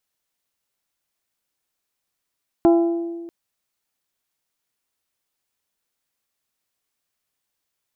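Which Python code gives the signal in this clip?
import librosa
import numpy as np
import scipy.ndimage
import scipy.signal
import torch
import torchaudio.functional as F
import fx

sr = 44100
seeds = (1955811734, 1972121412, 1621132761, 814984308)

y = fx.strike_glass(sr, length_s=0.64, level_db=-10.0, body='bell', hz=338.0, decay_s=1.61, tilt_db=7.0, modes=5)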